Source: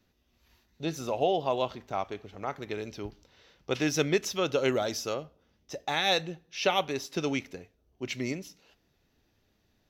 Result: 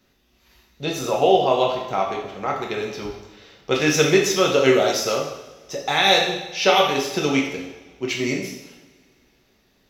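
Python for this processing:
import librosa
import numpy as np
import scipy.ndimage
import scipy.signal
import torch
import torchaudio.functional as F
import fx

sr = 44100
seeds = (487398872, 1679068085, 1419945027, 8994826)

y = fx.low_shelf(x, sr, hz=270.0, db=-6.0)
y = fx.rev_double_slope(y, sr, seeds[0], early_s=0.83, late_s=2.5, knee_db=-20, drr_db=-1.5)
y = y * librosa.db_to_amplitude(7.5)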